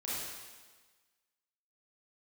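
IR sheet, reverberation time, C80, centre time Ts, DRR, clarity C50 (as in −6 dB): 1.4 s, 0.0 dB, 113 ms, −9.0 dB, −3.5 dB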